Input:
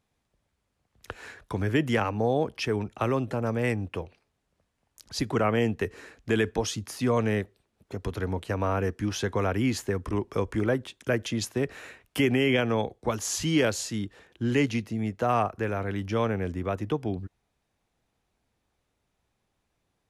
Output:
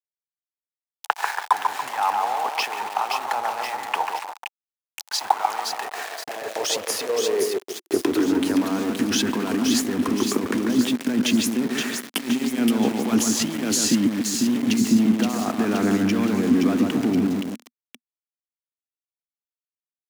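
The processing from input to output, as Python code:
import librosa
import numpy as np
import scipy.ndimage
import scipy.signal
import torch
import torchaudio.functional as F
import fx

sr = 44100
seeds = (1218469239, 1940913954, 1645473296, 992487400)

y = fx.peak_eq(x, sr, hz=540.0, db=-8.0, octaves=0.35)
y = fx.over_compress(y, sr, threshold_db=-35.0, ratio=-1.0)
y = fx.echo_split(y, sr, split_hz=2200.0, low_ms=142, high_ms=522, feedback_pct=52, wet_db=-4)
y = np.where(np.abs(y) >= 10.0 ** (-37.0 / 20.0), y, 0.0)
y = fx.filter_sweep_highpass(y, sr, from_hz=840.0, to_hz=240.0, start_s=5.67, end_s=8.83, q=5.9)
y = y * librosa.db_to_amplitude(7.0)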